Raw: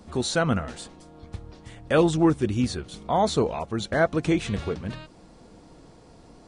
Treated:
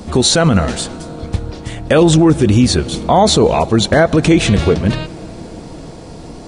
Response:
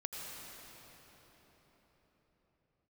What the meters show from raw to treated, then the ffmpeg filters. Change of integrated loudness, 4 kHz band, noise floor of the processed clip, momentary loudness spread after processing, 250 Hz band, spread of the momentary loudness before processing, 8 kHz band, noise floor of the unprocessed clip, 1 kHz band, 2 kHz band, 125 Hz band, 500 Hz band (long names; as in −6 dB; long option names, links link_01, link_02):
+12.0 dB, +16.5 dB, −32 dBFS, 19 LU, +12.5 dB, 20 LU, +17.0 dB, −52 dBFS, +11.0 dB, +10.0 dB, +14.5 dB, +11.5 dB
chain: -filter_complex "[0:a]equalizer=frequency=1300:width=1.2:gain=-3.5,asplit=2[link_01][link_02];[1:a]atrim=start_sample=2205[link_03];[link_02][link_03]afir=irnorm=-1:irlink=0,volume=-20.5dB[link_04];[link_01][link_04]amix=inputs=2:normalize=0,alimiter=level_in=18.5dB:limit=-1dB:release=50:level=0:latency=1,volume=-1dB"